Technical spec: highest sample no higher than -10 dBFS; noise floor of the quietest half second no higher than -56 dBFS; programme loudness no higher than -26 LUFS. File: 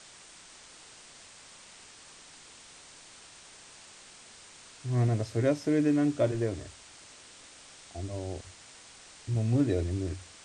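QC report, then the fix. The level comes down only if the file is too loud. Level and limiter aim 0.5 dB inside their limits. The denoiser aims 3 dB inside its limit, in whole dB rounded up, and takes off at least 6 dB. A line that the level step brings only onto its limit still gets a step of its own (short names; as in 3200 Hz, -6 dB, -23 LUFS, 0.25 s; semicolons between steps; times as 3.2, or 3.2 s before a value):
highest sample -14.0 dBFS: OK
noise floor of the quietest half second -52 dBFS: fail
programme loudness -30.0 LUFS: OK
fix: denoiser 7 dB, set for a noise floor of -52 dBFS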